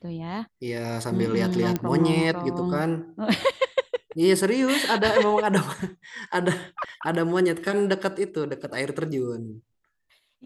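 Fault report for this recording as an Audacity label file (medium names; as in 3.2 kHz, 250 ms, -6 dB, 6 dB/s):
1.760000	1.760000	pop -12 dBFS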